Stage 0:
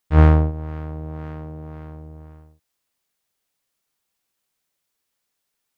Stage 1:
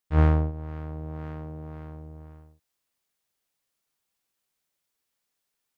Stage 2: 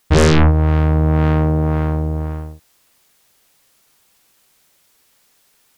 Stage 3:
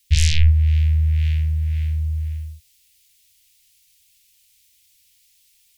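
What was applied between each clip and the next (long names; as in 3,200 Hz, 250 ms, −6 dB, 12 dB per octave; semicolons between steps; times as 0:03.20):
automatic gain control gain up to 4 dB; level −7.5 dB
sine wavefolder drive 15 dB, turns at −11 dBFS; level +4 dB
inverse Chebyshev band-stop filter 190–1,300 Hz, stop band 40 dB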